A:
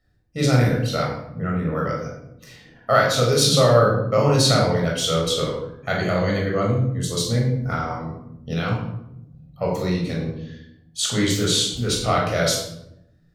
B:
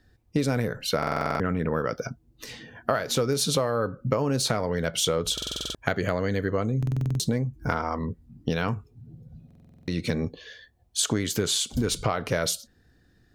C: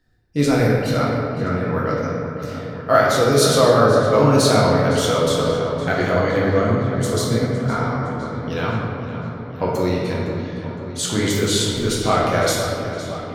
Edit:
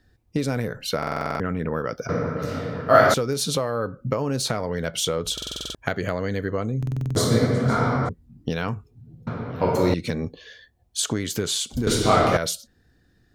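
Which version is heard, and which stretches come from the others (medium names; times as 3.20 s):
B
2.09–3.14 s: from C
7.16–8.09 s: from C
9.27–9.94 s: from C
11.87–12.37 s: from C
not used: A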